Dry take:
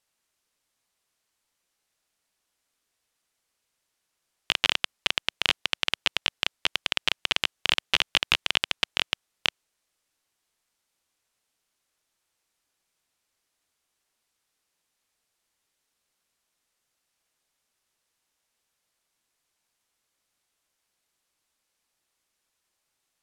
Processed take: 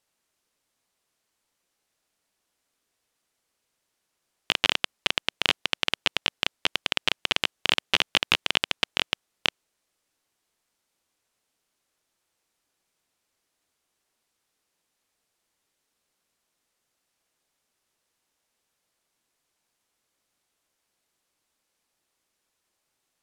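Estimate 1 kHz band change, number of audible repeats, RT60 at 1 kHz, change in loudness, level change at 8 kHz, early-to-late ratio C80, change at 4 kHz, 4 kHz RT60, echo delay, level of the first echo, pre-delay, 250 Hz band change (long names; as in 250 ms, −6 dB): +2.0 dB, no echo audible, no reverb audible, +0.5 dB, 0.0 dB, no reverb audible, +0.5 dB, no reverb audible, no echo audible, no echo audible, no reverb audible, +4.5 dB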